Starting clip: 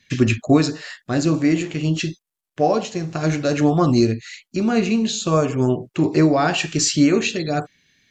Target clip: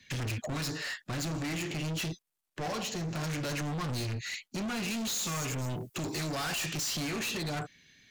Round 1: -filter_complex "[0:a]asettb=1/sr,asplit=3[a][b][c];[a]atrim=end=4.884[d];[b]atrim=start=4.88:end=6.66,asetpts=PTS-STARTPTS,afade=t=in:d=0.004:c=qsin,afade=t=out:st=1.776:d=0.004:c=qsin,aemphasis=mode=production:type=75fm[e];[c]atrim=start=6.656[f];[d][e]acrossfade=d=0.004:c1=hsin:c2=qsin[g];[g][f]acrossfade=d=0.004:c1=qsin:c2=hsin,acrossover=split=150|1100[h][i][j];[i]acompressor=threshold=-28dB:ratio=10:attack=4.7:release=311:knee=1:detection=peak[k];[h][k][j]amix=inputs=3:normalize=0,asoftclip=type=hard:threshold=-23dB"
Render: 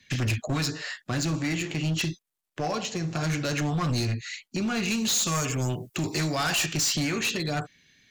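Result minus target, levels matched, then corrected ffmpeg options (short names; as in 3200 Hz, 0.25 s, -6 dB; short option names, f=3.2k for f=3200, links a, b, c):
hard clip: distortion -5 dB
-filter_complex "[0:a]asettb=1/sr,asplit=3[a][b][c];[a]atrim=end=4.884[d];[b]atrim=start=4.88:end=6.66,asetpts=PTS-STARTPTS,afade=t=in:d=0.004:c=qsin,afade=t=out:st=1.776:d=0.004:c=qsin,aemphasis=mode=production:type=75fm[e];[c]atrim=start=6.656[f];[d][e]acrossfade=d=0.004:c1=hsin:c2=qsin[g];[g][f]acrossfade=d=0.004:c1=qsin:c2=hsin,acrossover=split=150|1100[h][i][j];[i]acompressor=threshold=-28dB:ratio=10:attack=4.7:release=311:knee=1:detection=peak[k];[h][k][j]amix=inputs=3:normalize=0,asoftclip=type=hard:threshold=-32.5dB"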